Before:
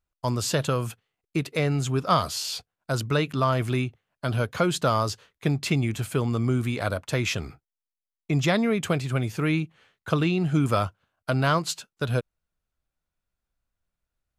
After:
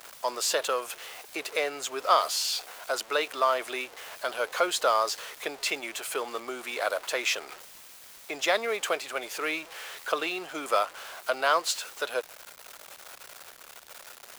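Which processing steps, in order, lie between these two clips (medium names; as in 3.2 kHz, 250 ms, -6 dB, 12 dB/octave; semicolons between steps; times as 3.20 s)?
jump at every zero crossing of -35 dBFS; high-pass 470 Hz 24 dB/octave; crackle 400 per s -41 dBFS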